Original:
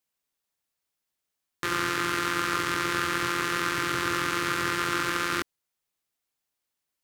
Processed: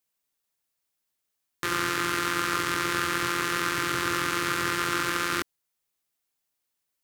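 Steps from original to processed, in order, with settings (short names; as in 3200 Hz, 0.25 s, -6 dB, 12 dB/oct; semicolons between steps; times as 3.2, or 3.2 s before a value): high shelf 7600 Hz +4.5 dB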